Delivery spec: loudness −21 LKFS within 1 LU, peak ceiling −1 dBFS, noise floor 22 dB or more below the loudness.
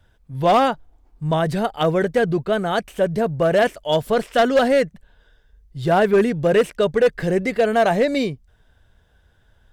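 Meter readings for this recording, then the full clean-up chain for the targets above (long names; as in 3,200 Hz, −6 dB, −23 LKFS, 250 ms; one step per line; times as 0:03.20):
share of clipped samples 2.1%; peaks flattened at −10.0 dBFS; integrated loudness −19.5 LKFS; sample peak −10.0 dBFS; target loudness −21.0 LKFS
→ clipped peaks rebuilt −10 dBFS
level −1.5 dB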